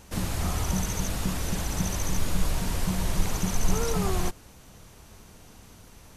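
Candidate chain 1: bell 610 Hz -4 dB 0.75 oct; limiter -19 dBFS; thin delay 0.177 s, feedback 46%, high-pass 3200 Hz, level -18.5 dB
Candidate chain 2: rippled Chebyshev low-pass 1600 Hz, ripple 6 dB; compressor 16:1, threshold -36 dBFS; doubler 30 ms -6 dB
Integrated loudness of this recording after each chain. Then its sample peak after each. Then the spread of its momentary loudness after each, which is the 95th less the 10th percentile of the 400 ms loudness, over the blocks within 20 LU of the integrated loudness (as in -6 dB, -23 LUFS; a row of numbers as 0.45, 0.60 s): -31.5, -43.5 LUFS; -18.5, -27.0 dBFS; 21, 14 LU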